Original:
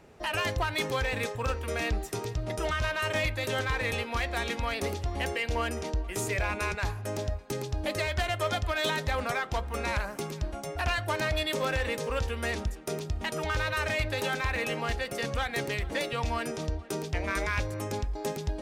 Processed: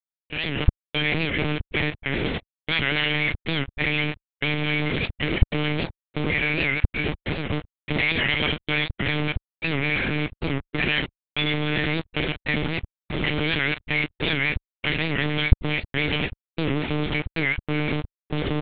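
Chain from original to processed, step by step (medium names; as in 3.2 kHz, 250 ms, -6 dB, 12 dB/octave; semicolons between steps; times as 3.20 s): feedback delay 287 ms, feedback 41%, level -11.5 dB; trance gate "x.xx..xxxx." 95 bpm -60 dB; vowel filter i; compression 4:1, threshold -46 dBFS, peak gain reduction 7.5 dB; doubling 35 ms -13 dB; de-hum 403.5 Hz, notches 34; fuzz box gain 67 dB, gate -58 dBFS; level rider gain up to 11.5 dB; monotone LPC vocoder at 8 kHz 150 Hz; bass shelf 75 Hz -9 dB; warped record 78 rpm, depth 160 cents; trim -15 dB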